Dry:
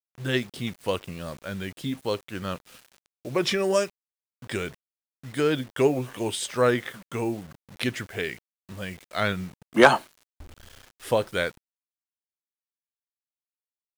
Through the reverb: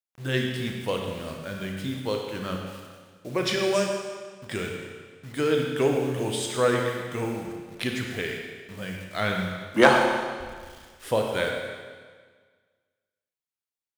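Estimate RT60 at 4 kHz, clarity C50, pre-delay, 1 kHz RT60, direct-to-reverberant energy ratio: 1.5 s, 2.5 dB, 31 ms, 1.6 s, 1.5 dB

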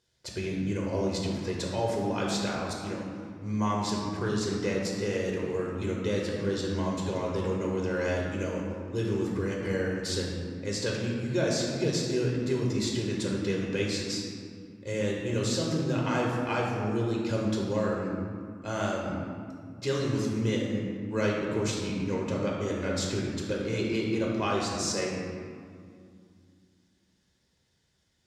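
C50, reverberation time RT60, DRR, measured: 0.5 dB, 2.3 s, -2.5 dB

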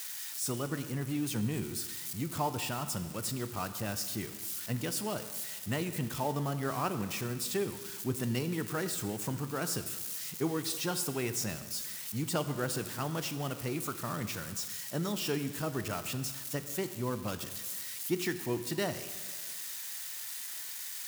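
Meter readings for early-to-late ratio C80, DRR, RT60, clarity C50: 12.5 dB, 10.0 dB, 1.6 s, 11.5 dB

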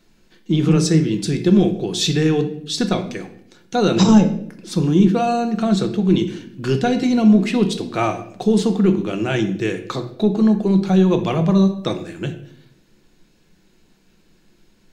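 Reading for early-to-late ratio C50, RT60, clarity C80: 11.0 dB, 0.65 s, 14.5 dB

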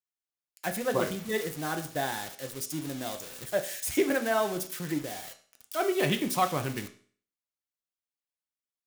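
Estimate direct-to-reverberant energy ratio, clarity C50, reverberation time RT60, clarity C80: 5.5 dB, 12.5 dB, 0.45 s, 16.5 dB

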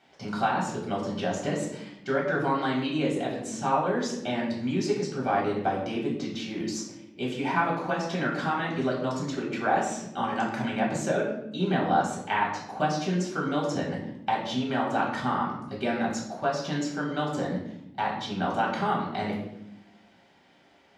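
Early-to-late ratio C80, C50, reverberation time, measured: 7.5 dB, 4.0 dB, 0.80 s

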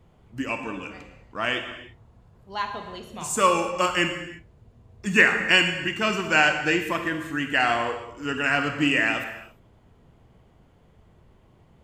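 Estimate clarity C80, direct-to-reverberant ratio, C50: 9.0 dB, 6.0 dB, 7.0 dB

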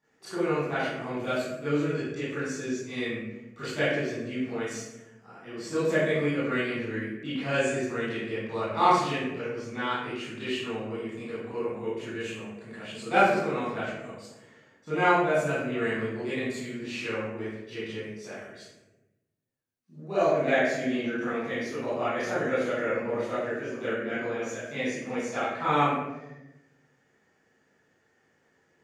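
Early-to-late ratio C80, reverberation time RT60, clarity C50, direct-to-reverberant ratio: 1.5 dB, 1.0 s, -2.5 dB, -13.5 dB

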